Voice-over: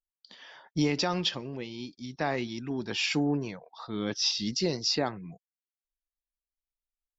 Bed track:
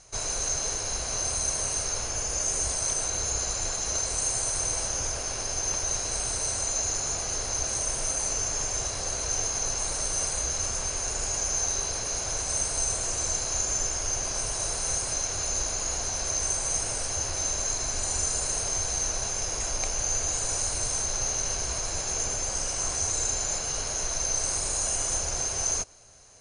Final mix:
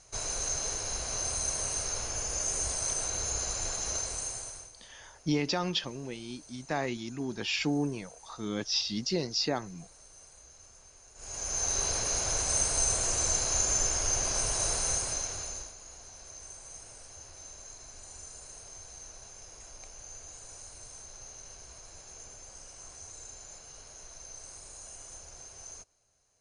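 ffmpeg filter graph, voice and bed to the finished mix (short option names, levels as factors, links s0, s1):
-filter_complex "[0:a]adelay=4500,volume=0.794[s0];[1:a]volume=11.9,afade=t=out:st=3.88:d=0.83:silence=0.0841395,afade=t=in:st=11.15:d=0.72:silence=0.0530884,afade=t=out:st=14.73:d=1.01:silence=0.112202[s1];[s0][s1]amix=inputs=2:normalize=0"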